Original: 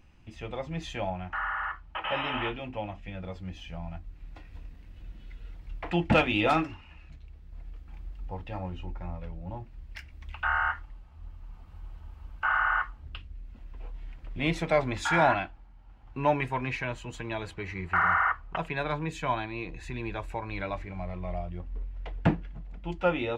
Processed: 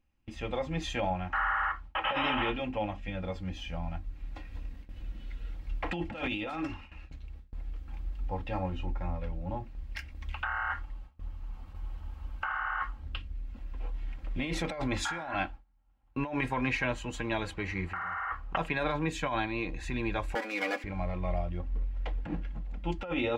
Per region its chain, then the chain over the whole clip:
0:20.35–0:20.84: lower of the sound and its delayed copy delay 0.42 ms + high-pass filter 280 Hz 24 dB per octave + comb filter 4.1 ms, depth 82%
whole clip: noise gate with hold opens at −40 dBFS; comb filter 3.7 ms, depth 37%; compressor whose output falls as the input rises −31 dBFS, ratio −1

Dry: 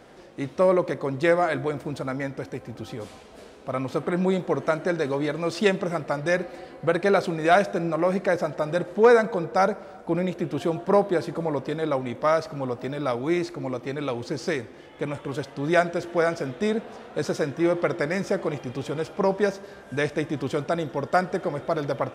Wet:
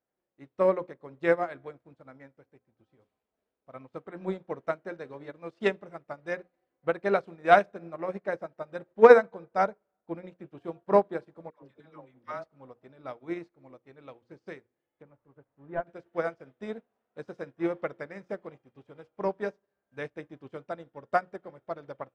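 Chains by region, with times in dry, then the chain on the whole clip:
0:11.50–0:12.44: dynamic equaliser 540 Hz, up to −6 dB, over −33 dBFS, Q 0.97 + all-pass dispersion lows, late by 122 ms, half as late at 700 Hz
0:15.02–0:15.87: linear delta modulator 64 kbit/s, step −34 dBFS + low-pass filter 1,200 Hz + parametric band 440 Hz −3.5 dB 2 octaves
whole clip: bass and treble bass −1 dB, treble −12 dB; mains-hum notches 60/120/180/240/300/360/420/480/540 Hz; expander for the loud parts 2.5 to 1, over −41 dBFS; level +4 dB

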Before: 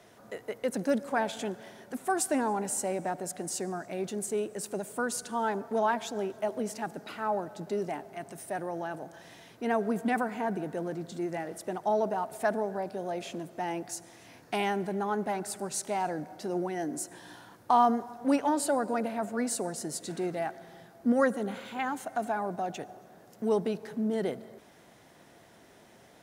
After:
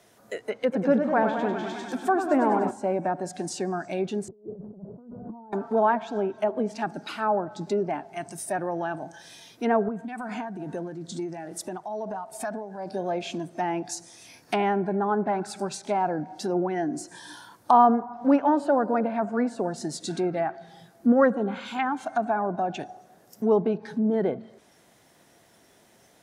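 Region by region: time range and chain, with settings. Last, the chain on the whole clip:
0:00.52–0:02.71: bad sample-rate conversion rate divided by 2×, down filtered, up hold + feedback echo with a swinging delay time 100 ms, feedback 75%, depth 120 cents, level −7 dB
0:04.28–0:05.53: Bessel low-pass filter 560 Hz, order 6 + compressor whose output falls as the input rises −46 dBFS
0:09.88–0:12.92: high-shelf EQ 11,000 Hz −3 dB + downward compressor 12 to 1, threshold −32 dBFS + amplitude tremolo 2.3 Hz, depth 45%
whole clip: noise reduction from a noise print of the clip's start 9 dB; treble cut that deepens with the level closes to 1,500 Hz, closed at −28 dBFS; high-shelf EQ 4,900 Hz +8 dB; level +6 dB

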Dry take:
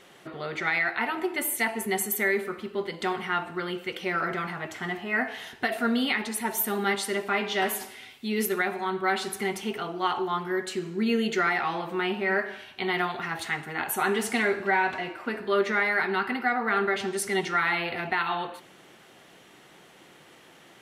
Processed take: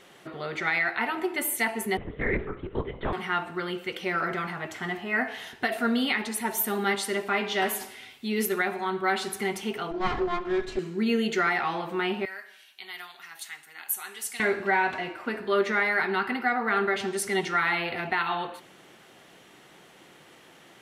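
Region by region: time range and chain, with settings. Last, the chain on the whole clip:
0:01.97–0:03.13: high-shelf EQ 2,200 Hz −10.5 dB + linear-prediction vocoder at 8 kHz whisper
0:09.91–0:10.79: lower of the sound and its delayed copy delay 2.9 ms + low-pass filter 6,700 Hz + spectral tilt −2 dB per octave
0:12.25–0:14.40: high-pass filter 86 Hz + first-order pre-emphasis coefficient 0.97
whole clip: no processing

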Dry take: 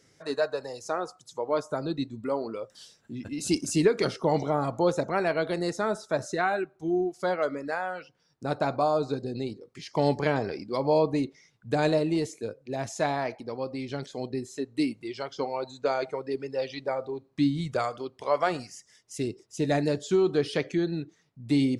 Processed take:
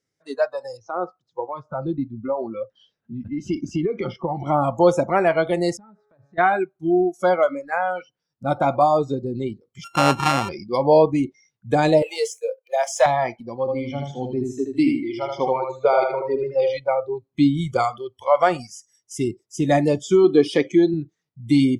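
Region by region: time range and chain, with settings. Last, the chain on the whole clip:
0:00.77–0:04.46: downward compressor 8 to 1, threshold −25 dBFS + high-frequency loss of the air 250 metres
0:05.77–0:06.38: low-pass filter 2,000 Hz + tuned comb filter 140 Hz, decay 1.9 s, mix 70% + downward compressor 10 to 1, threshold −43 dBFS
0:09.84–0:10.49: samples sorted by size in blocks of 32 samples + high-frequency loss of the air 58 metres
0:12.02–0:13.06: Butterworth high-pass 430 Hz 72 dB per octave + leveller curve on the samples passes 1
0:13.60–0:16.77: high-shelf EQ 6,400 Hz −12 dB + repeating echo 78 ms, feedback 43%, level −3 dB
0:20.24–0:20.94: low-shelf EQ 140 Hz −10 dB + hollow resonant body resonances 290/3,900 Hz, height 8 dB, ringing for 25 ms
whole clip: noise reduction from a noise print of the clip's start 19 dB; dynamic equaliser 640 Hz, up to +4 dB, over −39 dBFS, Q 0.94; automatic gain control gain up to 6.5 dB

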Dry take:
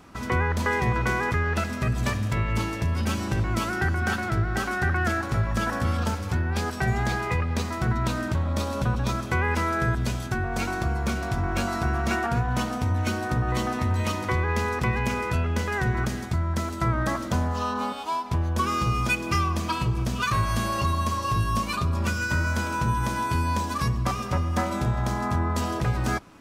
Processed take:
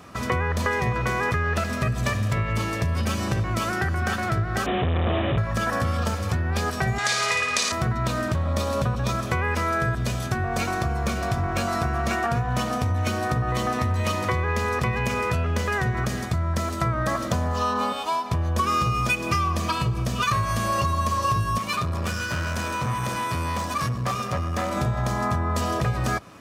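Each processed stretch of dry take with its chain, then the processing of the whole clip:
0:04.66–0:05.38: Butterworth low-pass 700 Hz 48 dB per octave + log-companded quantiser 2 bits + bad sample-rate conversion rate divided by 6×, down none, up filtered
0:06.98–0:07.72: meter weighting curve ITU-R 468 + flutter between parallel walls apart 9.6 metres, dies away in 0.79 s
0:21.58–0:24.77: high-pass filter 79 Hz 24 dB per octave + tube saturation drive 26 dB, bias 0.55
whole clip: downward compressor, threshold −25 dBFS; high-pass filter 79 Hz; comb filter 1.7 ms, depth 34%; level +5 dB

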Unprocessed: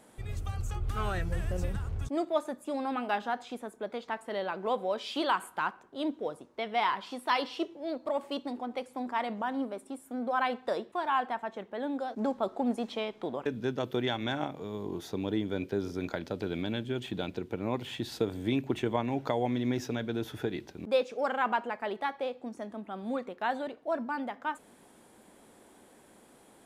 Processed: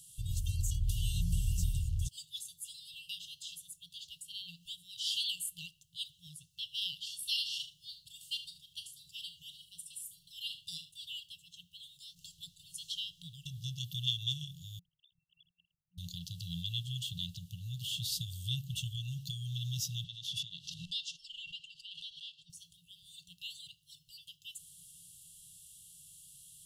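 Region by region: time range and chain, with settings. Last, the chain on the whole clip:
0:07.15–0:10.91: double-tracking delay 39 ms −11 dB + single-tap delay 75 ms −13 dB
0:14.79–0:15.98: three sine waves on the formant tracks + low-pass filter 1,600 Hz + amplitude modulation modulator 63 Hz, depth 90%
0:20.04–0:22.50: band-pass filter 290–4,500 Hz + background raised ahead of every attack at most 69 dB per second
whole clip: brick-wall band-stop 180–2,700 Hz; high-shelf EQ 4,500 Hz +12 dB; level +1 dB

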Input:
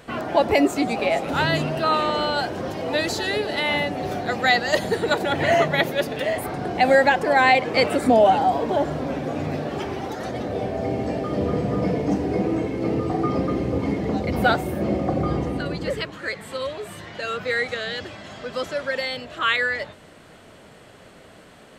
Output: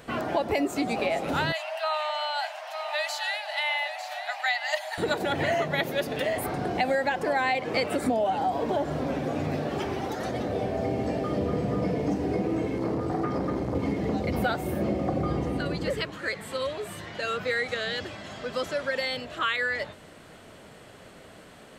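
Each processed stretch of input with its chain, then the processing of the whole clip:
0:01.52–0:04.98: Chebyshev high-pass with heavy ripple 600 Hz, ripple 6 dB + single-tap delay 901 ms −10.5 dB
0:12.78–0:13.75: parametric band 2,700 Hz −6 dB 0.47 octaves + saturating transformer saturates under 630 Hz
whole clip: high-shelf EQ 11,000 Hz +4 dB; downward compressor 4 to 1, threshold −22 dBFS; level −1.5 dB

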